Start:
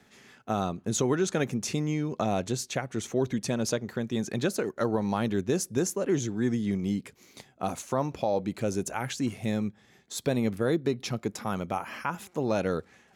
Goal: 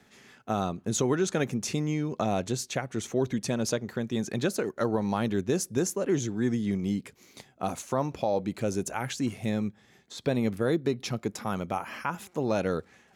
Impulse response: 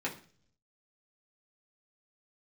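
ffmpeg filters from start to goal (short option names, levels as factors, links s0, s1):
-filter_complex "[0:a]asettb=1/sr,asplit=3[s0][s1][s2];[s0]atrim=end=9.494[s3];[s1]atrim=start=9.49:end=10.41,asetpts=PTS-STARTPTS,afade=t=in:d=0.004:c=qsin,afade=t=out:st=0.916:d=0.004:c=qsin,acrossover=split=5100[s4][s5];[s5]acompressor=threshold=0.00224:ratio=4:attack=1:release=60[s6];[s4][s6]amix=inputs=2:normalize=0[s7];[s2]atrim=start=10.406[s8];[s3][s7]acrossfade=d=0.004:c1=hsin:c2=qsin[s9];[s9][s8]acrossfade=d=0.004:c1=qsin:c2=hsin"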